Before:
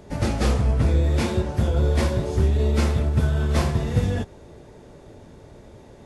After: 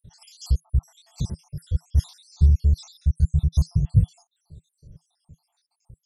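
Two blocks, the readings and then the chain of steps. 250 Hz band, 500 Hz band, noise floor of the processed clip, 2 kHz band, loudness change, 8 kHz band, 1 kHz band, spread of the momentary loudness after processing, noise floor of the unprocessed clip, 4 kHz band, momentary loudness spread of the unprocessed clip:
-9.0 dB, -24.5 dB, -78 dBFS, under -25 dB, -1.5 dB, -7.0 dB, under -20 dB, 12 LU, -47 dBFS, -9.0 dB, 4 LU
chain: random holes in the spectrogram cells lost 78%; FFT filter 160 Hz 0 dB, 250 Hz -21 dB, 2.4 kHz -28 dB, 3.8 kHz -6 dB; trim +5 dB

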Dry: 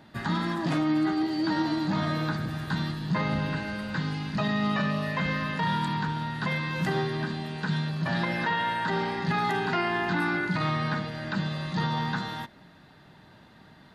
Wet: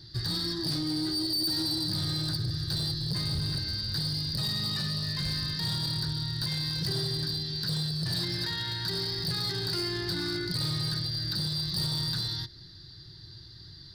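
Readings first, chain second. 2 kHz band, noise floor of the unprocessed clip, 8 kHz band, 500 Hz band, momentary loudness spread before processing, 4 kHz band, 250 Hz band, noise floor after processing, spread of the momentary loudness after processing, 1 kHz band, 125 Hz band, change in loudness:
-11.5 dB, -54 dBFS, +10.5 dB, -8.0 dB, 5 LU, +9.5 dB, -7.0 dB, -49 dBFS, 4 LU, -17.0 dB, -1.5 dB, -1.0 dB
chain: FFT filter 120 Hz 0 dB, 230 Hz -26 dB, 350 Hz -9 dB, 500 Hz -27 dB, 780 Hz -29 dB, 1.1 kHz -24 dB, 1.8 kHz -17 dB, 2.6 kHz -23 dB, 4.7 kHz +12 dB, 6.8 kHz -11 dB; in parallel at -1.5 dB: compression, threshold -45 dBFS, peak gain reduction 16 dB; on the sum: hard clipper -32.5 dBFS, distortion -12 dB; trim +6 dB

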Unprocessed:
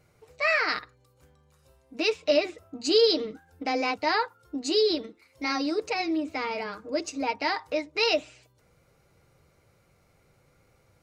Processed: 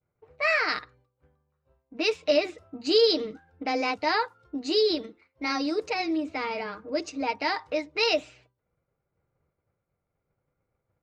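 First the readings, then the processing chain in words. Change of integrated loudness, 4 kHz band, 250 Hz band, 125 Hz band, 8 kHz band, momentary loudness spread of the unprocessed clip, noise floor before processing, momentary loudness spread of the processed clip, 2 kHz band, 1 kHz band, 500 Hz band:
0.0 dB, 0.0 dB, 0.0 dB, no reading, -4.5 dB, 11 LU, -65 dBFS, 11 LU, 0.0 dB, 0.0 dB, 0.0 dB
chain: level-controlled noise filter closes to 1.6 kHz, open at -22 dBFS; expander -53 dBFS

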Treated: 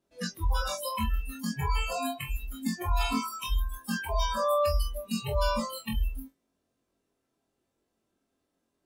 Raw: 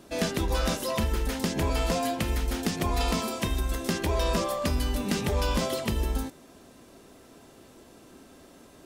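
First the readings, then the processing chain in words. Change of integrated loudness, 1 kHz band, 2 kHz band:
-2.5 dB, +0.5 dB, -2.5 dB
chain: flutter echo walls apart 3.8 m, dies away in 0.27 s; spectral noise reduction 29 dB

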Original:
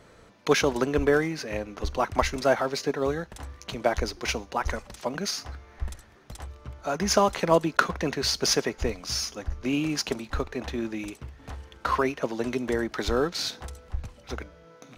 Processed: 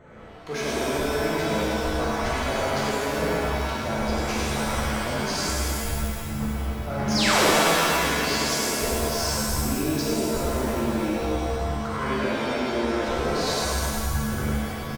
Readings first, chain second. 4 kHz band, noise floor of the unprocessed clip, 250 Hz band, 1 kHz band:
+4.0 dB, -54 dBFS, +4.0 dB, +3.5 dB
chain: local Wiener filter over 9 samples; on a send: delay 104 ms -6.5 dB; on the sum: hard clipper -18 dBFS, distortion -13 dB; reverse; compression 6:1, threshold -34 dBFS, peak gain reduction 13 dB; reverse; painted sound fall, 7.15–7.46 s, 260–5900 Hz -28 dBFS; peaking EQ 3 kHz -4 dB; pitch-shifted reverb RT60 2.2 s, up +7 st, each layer -2 dB, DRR -7 dB; trim +1.5 dB

